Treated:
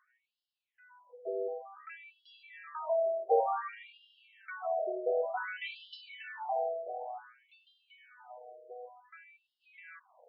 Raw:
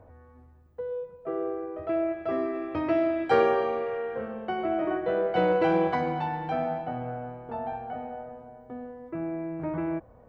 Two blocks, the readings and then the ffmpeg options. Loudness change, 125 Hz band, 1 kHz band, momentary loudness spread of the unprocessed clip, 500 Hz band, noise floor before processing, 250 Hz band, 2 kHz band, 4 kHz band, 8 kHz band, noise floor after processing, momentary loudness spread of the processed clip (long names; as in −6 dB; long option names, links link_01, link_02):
−6.0 dB, below −40 dB, −7.0 dB, 15 LU, −8.0 dB, −54 dBFS, below −25 dB, −7.0 dB, −5.0 dB, can't be measured, below −85 dBFS, 22 LU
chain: -af "highshelf=frequency=2800:gain=8.5,afftfilt=real='re*between(b*sr/1024,500*pow(3900/500,0.5+0.5*sin(2*PI*0.55*pts/sr))/1.41,500*pow(3900/500,0.5+0.5*sin(2*PI*0.55*pts/sr))*1.41)':imag='im*between(b*sr/1024,500*pow(3900/500,0.5+0.5*sin(2*PI*0.55*pts/sr))/1.41,500*pow(3900/500,0.5+0.5*sin(2*PI*0.55*pts/sr))*1.41)':win_size=1024:overlap=0.75,volume=-3dB"